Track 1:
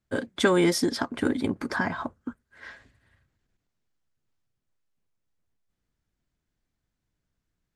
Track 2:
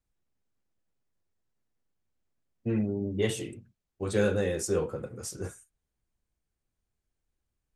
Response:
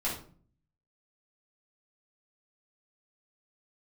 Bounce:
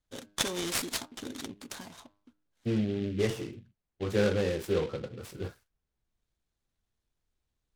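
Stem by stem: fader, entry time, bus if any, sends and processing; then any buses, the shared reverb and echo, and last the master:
-15.0 dB, 0.00 s, no send, resonant high shelf 2600 Hz +13 dB, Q 3; de-hum 101.8 Hz, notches 18; auto duck -15 dB, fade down 0.95 s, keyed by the second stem
-0.5 dB, 0.00 s, no send, steep low-pass 9300 Hz; high shelf 3900 Hz -5 dB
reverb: off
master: LPF 5800 Hz 24 dB/oct; noise-modulated delay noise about 2500 Hz, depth 0.049 ms

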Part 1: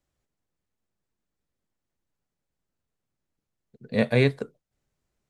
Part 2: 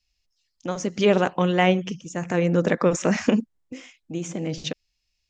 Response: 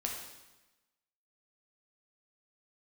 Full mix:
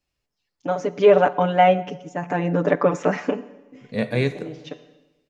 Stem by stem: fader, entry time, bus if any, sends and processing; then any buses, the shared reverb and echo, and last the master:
-4.0 dB, 0.00 s, send -9.5 dB, dry
0.0 dB, 0.00 s, send -15 dB, comb 6.9 ms, depth 97%; AGC gain up to 3 dB; band-pass 660 Hz, Q 0.63; auto duck -15 dB, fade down 0.65 s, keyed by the first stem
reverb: on, RT60 1.1 s, pre-delay 5 ms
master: dry

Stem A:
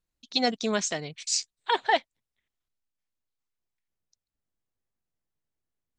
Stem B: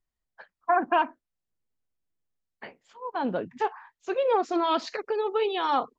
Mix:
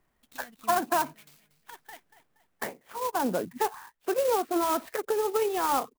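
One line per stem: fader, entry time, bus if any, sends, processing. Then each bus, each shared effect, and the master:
-1.0 dB, 0.00 s, no send, echo send -13.5 dB, bell 490 Hz -14 dB 2 oct; compressor 10:1, threshold -37 dBFS, peak gain reduction 15.5 dB; noise-modulated level
-1.0 dB, 0.00 s, no send, no echo send, three-band squash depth 70%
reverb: off
echo: feedback echo 0.236 s, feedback 39%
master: LPF 2600 Hz 12 dB/oct; clock jitter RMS 0.051 ms

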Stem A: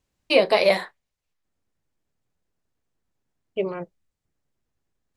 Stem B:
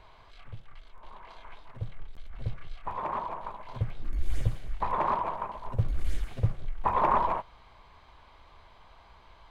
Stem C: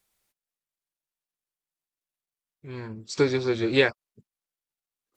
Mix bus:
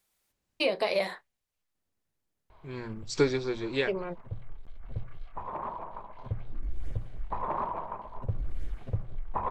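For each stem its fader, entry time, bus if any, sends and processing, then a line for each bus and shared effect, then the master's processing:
-4.5 dB, 0.30 s, bus A, no send, dry
-1.5 dB, 2.50 s, bus A, no send, high shelf 2000 Hz -12 dB
3.14 s -1 dB -> 3.65 s -9 dB, 0.00 s, no bus, no send, dry
bus A: 0.0 dB, compressor 2.5:1, threshold -26 dBFS, peak gain reduction 7 dB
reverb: off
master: notches 60/120 Hz

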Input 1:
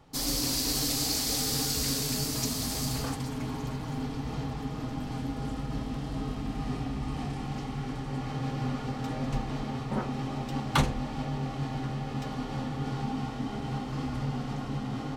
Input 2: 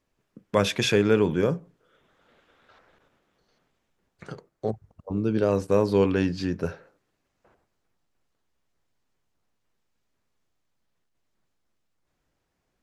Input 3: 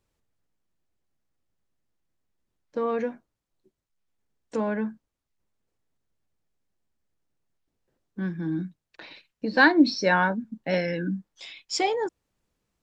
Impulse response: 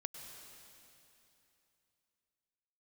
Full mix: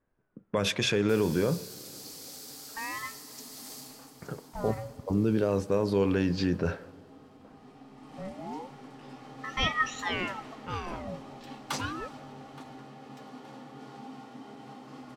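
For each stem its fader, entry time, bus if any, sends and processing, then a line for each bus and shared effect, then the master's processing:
-14.0 dB, 0.95 s, bus A, send -4 dB, echo send -11 dB, HPF 270 Hz 12 dB/oct; high shelf 6800 Hz +7 dB; auto duck -12 dB, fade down 0.50 s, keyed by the second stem
0.0 dB, 0.00 s, bus A, send -16 dB, no echo send, low-pass opened by the level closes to 1800 Hz, open at -18.5 dBFS
-9.5 dB, 0.00 s, no bus, send -9 dB, no echo send, ring modulator with a swept carrier 960 Hz, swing 65%, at 0.31 Hz
bus A: 0.0 dB, vocal rider within 4 dB 0.5 s; limiter -18.5 dBFS, peak gain reduction 9.5 dB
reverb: on, RT60 3.0 s, pre-delay 93 ms
echo: feedback echo 0.872 s, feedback 41%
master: mismatched tape noise reduction decoder only

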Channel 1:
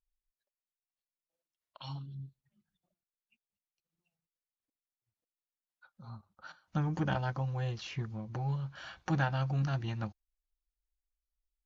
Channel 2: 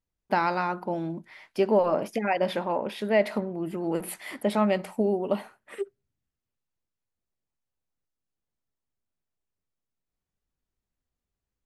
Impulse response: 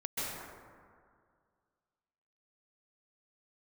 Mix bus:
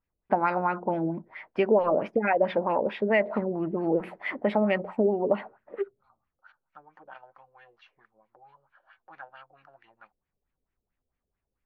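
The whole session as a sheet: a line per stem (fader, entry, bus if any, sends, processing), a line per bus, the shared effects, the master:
-11.0 dB, 0.00 s, no send, HPF 790 Hz 12 dB/oct
+1.5 dB, 0.00 s, no send, dry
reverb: off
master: LFO low-pass sine 4.5 Hz 460–2400 Hz; compressor 2:1, threshold -22 dBFS, peak gain reduction 6.5 dB

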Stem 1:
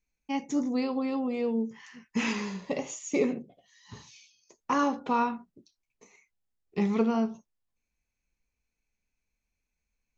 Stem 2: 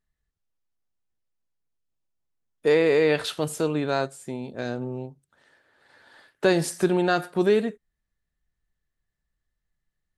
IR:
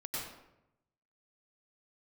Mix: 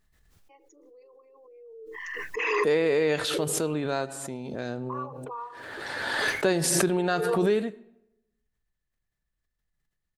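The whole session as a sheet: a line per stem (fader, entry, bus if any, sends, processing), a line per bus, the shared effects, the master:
1.75 s -17 dB -> 1.95 s -8.5 dB, 0.20 s, no send, formant sharpening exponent 2; rippled Chebyshev high-pass 310 Hz, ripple 9 dB; notch 1300 Hz
-4.5 dB, 0.00 s, send -22.5 dB, dry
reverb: on, RT60 0.85 s, pre-delay 89 ms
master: backwards sustainer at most 26 dB/s

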